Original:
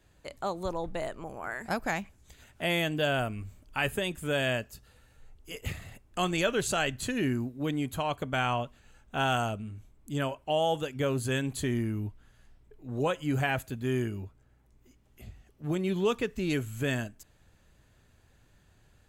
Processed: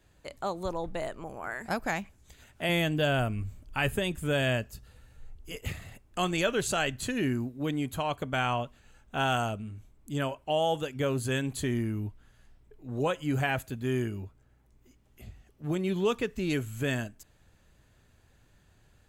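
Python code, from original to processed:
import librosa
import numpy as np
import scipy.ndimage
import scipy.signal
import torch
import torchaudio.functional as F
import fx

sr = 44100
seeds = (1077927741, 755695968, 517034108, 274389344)

y = fx.low_shelf(x, sr, hz=180.0, db=7.5, at=(2.69, 5.58))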